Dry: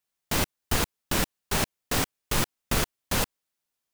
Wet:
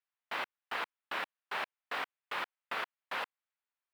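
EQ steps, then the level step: HPF 990 Hz 12 dB/oct; air absorption 480 m; 0.0 dB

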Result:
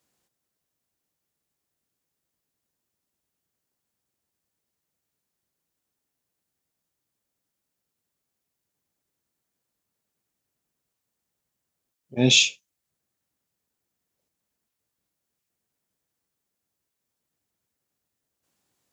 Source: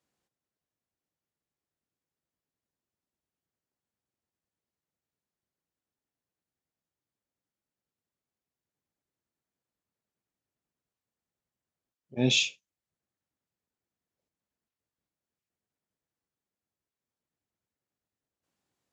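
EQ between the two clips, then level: high shelf 5500 Hz +8 dB; +5.5 dB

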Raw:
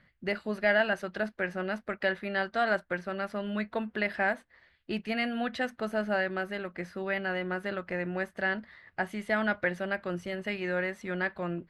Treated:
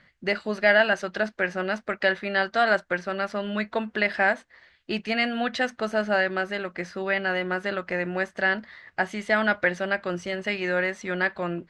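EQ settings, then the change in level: synth low-pass 6700 Hz, resonance Q 1.7; low shelf 220 Hz -6.5 dB; +6.5 dB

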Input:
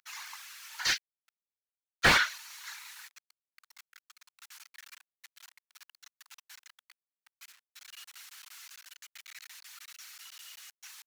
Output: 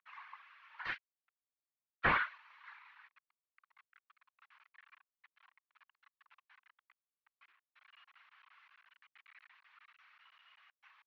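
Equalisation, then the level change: LPF 2600 Hz 24 dB/oct; air absorption 51 m; bell 1100 Hz +8.5 dB 0.3 oct; -8.0 dB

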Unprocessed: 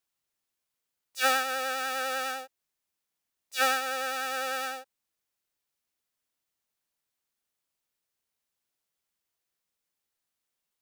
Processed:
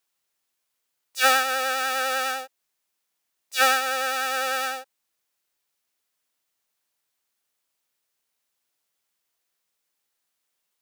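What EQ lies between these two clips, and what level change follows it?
low shelf 250 Hz -8.5 dB; +6.5 dB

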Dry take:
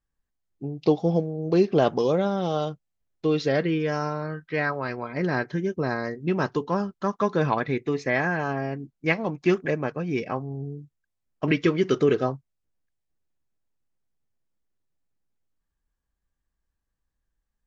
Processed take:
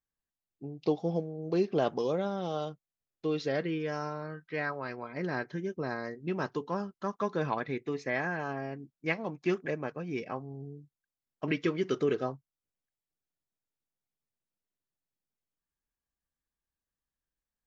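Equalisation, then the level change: low shelf 75 Hz -11.5 dB; -7.5 dB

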